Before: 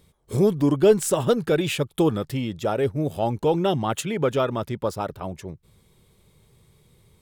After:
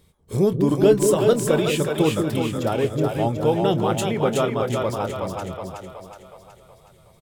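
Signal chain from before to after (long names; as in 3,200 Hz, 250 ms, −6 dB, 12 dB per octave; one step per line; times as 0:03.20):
double-tracking delay 26 ms −13.5 dB
on a send: echo with a time of its own for lows and highs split 470 Hz, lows 193 ms, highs 370 ms, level −3.5 dB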